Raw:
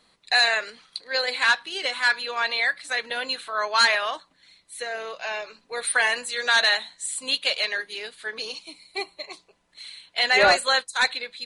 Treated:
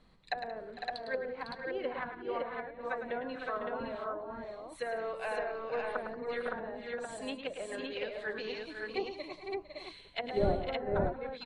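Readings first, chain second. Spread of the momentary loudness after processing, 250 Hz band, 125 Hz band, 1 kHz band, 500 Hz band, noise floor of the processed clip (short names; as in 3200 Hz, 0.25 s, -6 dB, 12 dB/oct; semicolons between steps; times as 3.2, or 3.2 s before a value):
8 LU, +3.0 dB, n/a, -11.5 dB, -4.5 dB, -54 dBFS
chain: RIAA curve playback; treble ducked by the level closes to 390 Hz, closed at -23 dBFS; tapped delay 0.106/0.18/0.453/0.504/0.563 s -8.5/-16.5/-16/-7.5/-3 dB; gain -5 dB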